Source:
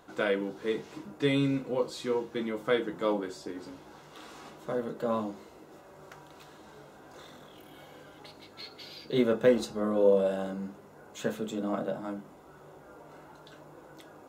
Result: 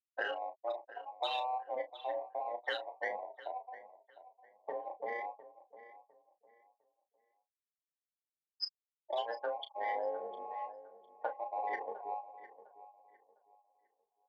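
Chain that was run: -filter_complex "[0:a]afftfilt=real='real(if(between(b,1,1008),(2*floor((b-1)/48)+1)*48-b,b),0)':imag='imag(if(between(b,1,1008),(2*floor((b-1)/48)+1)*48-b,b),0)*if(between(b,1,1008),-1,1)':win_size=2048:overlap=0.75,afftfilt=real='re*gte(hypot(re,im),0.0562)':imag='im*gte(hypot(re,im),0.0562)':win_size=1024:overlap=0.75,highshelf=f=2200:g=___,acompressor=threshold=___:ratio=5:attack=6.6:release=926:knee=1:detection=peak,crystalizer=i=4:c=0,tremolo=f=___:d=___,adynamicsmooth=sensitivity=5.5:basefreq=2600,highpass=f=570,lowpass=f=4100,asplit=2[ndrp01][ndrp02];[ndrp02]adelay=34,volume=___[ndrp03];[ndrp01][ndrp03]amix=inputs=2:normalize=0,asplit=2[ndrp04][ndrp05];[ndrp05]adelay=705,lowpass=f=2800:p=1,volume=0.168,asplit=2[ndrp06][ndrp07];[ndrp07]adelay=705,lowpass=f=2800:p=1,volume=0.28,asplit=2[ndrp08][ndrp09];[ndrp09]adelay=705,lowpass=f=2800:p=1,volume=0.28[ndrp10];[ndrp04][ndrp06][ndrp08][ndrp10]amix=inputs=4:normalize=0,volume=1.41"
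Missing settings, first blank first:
12, 0.0251, 250, 0.571, 0.299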